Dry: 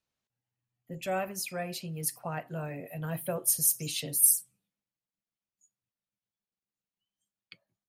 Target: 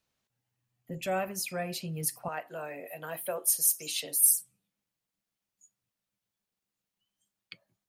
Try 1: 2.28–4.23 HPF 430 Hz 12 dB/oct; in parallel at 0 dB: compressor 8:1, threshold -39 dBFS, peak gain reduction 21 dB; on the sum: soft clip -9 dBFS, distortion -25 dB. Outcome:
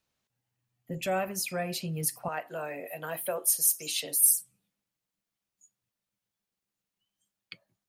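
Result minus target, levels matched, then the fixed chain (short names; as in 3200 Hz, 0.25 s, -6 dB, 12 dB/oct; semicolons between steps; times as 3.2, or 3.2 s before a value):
compressor: peak gain reduction -9.5 dB
2.28–4.23 HPF 430 Hz 12 dB/oct; in parallel at 0 dB: compressor 8:1, threshold -50 dBFS, peak gain reduction 31 dB; on the sum: soft clip -9 dBFS, distortion -26 dB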